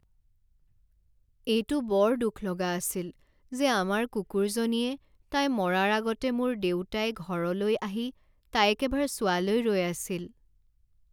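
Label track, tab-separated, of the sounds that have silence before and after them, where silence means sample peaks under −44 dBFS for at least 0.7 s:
1.450000	10.270000	sound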